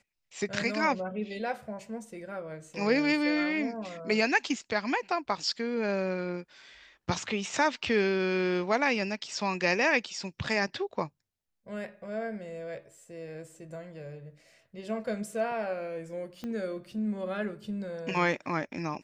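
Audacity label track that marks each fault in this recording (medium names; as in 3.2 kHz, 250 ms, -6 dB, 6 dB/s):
16.440000	16.440000	pop -25 dBFS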